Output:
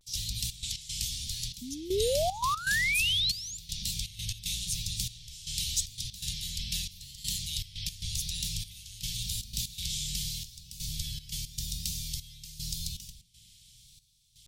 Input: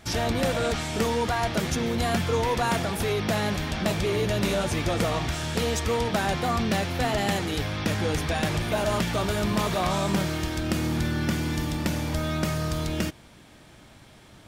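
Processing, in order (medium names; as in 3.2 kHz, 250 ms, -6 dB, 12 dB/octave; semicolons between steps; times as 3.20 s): octave divider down 2 oct, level -2 dB; inverse Chebyshev band-stop 420–1200 Hz, stop band 70 dB; tilt shelf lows -7 dB, about 780 Hz; band-passed feedback delay 224 ms, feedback 77%, band-pass 410 Hz, level -11.5 dB; reverberation RT60 0.55 s, pre-delay 5 ms, DRR 13 dB; painted sound rise, 1.62–3.57 s, 230–7200 Hz -25 dBFS; trance gate ".xxx.x.xxxxx.." 118 bpm -12 dB; vibrato 0.87 Hz 87 cents; trim -3 dB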